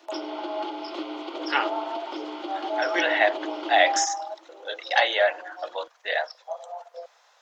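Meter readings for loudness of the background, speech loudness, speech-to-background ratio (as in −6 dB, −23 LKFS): −35.5 LKFS, −25.5 LKFS, 10.0 dB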